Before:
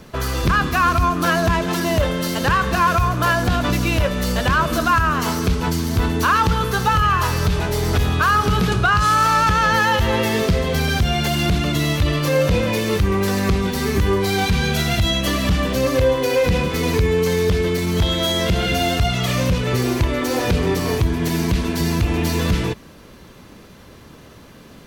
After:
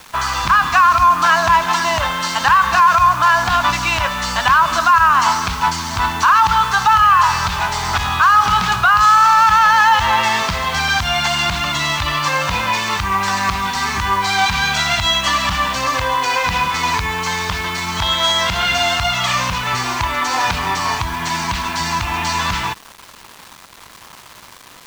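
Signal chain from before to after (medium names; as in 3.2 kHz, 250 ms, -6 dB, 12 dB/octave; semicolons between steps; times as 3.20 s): steep low-pass 8.2 kHz; resonant low shelf 650 Hz -12.5 dB, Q 3; peak limiter -9.5 dBFS, peak gain reduction 7.5 dB; bit crusher 7-bit; trim +5.5 dB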